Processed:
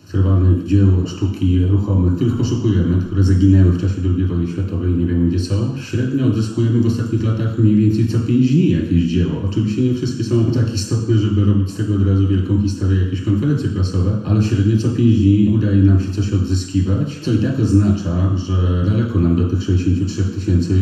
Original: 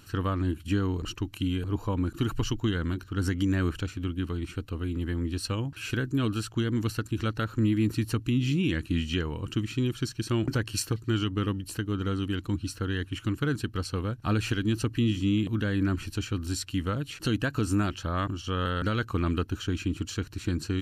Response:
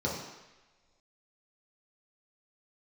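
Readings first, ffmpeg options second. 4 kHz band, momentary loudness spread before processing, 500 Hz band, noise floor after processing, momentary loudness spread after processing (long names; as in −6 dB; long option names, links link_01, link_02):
+2.5 dB, 6 LU, +10.5 dB, −29 dBFS, 6 LU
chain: -filter_complex "[0:a]acrossover=split=370|3000[link_01][link_02][link_03];[link_02]acompressor=threshold=-39dB:ratio=6[link_04];[link_01][link_04][link_03]amix=inputs=3:normalize=0[link_05];[1:a]atrim=start_sample=2205,asetrate=52920,aresample=44100[link_06];[link_05][link_06]afir=irnorm=-1:irlink=0,volume=1dB"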